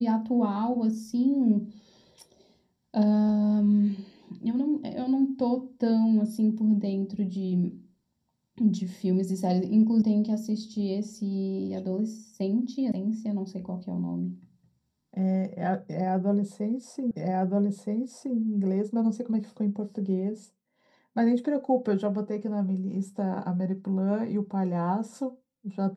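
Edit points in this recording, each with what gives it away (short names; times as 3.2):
10.02 sound cut off
12.92 sound cut off
17.11 repeat of the last 1.27 s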